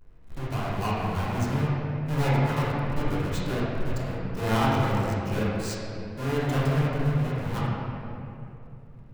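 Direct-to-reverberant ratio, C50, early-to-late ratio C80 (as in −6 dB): −11.0 dB, −3.5 dB, −1.5 dB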